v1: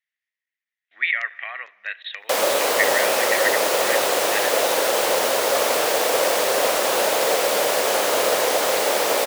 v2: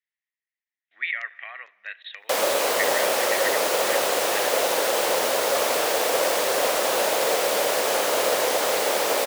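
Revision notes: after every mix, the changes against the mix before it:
speech -6.0 dB; background: send off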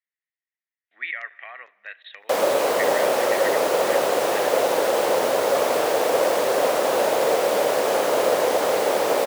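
master: add tilt shelf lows +5.5 dB, about 1.3 kHz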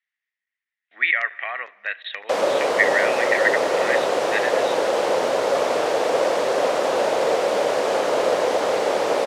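speech +10.5 dB; master: add low-pass 6.8 kHz 12 dB/octave

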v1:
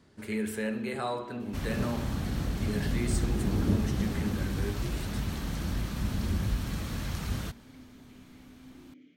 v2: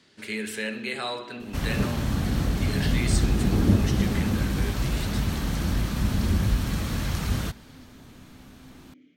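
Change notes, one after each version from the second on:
speech: add frequency weighting D; second sound +6.5 dB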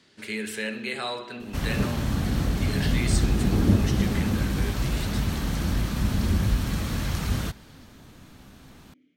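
first sound -7.0 dB

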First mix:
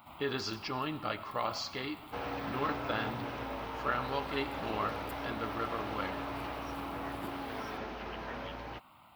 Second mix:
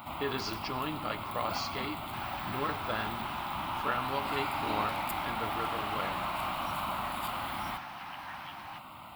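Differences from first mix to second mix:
first sound +11.5 dB; second sound: add brick-wall FIR high-pass 690 Hz

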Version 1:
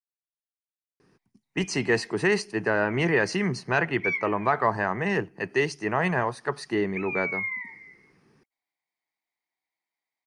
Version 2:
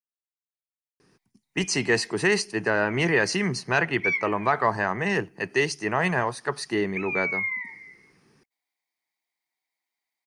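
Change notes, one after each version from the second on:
master: add treble shelf 3.3 kHz +8.5 dB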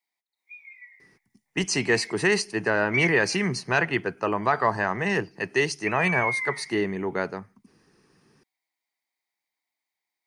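background: entry -1.10 s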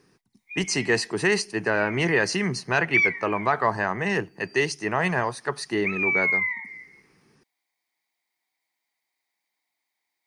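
speech: entry -1.00 s; background +5.0 dB

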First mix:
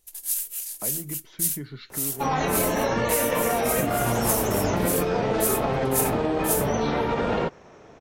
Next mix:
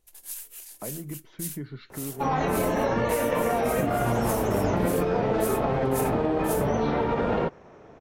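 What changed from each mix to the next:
master: add treble shelf 3 kHz -11.5 dB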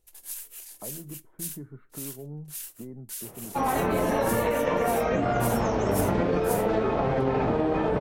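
speech: add four-pole ladder low-pass 1.5 kHz, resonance 20%; second sound: entry +1.35 s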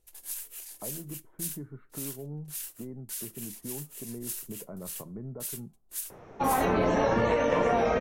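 second sound: entry +2.85 s

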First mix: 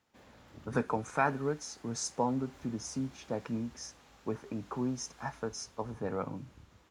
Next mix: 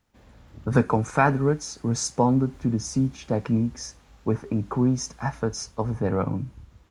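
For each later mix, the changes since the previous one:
speech +8.0 dB; master: remove high-pass 290 Hz 6 dB/octave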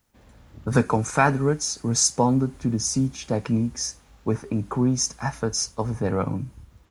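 speech: add treble shelf 3.9 kHz +12 dB

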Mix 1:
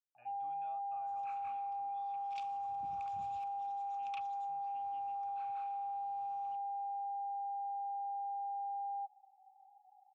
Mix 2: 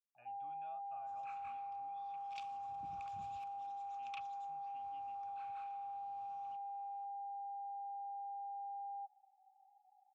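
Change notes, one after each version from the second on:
first sound -5.5 dB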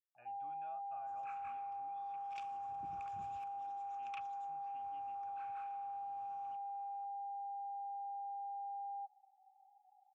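master: add fifteen-band graphic EQ 400 Hz +8 dB, 1.6 kHz +6 dB, 4 kHz -8 dB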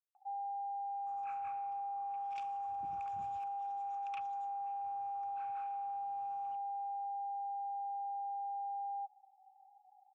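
speech: muted; first sound +4.0 dB

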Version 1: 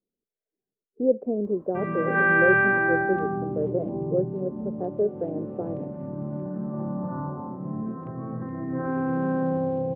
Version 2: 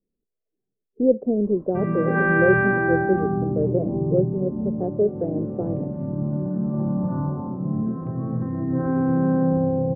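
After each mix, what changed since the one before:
master: add tilt EQ -3 dB/octave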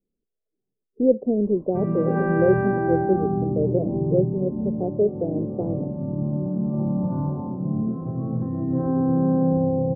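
master: add high-order bell 2.7 kHz -12.5 dB 2.4 oct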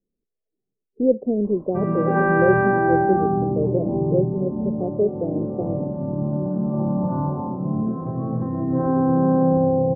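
background: add peaking EQ 1.3 kHz +9 dB 2.8 oct

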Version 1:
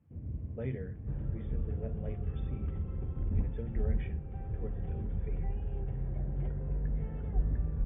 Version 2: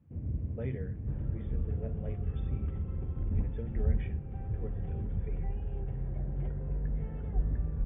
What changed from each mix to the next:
first sound +4.5 dB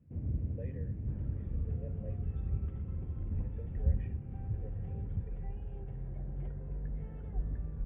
speech: add vowel filter e; second sound -4.0 dB; reverb: off

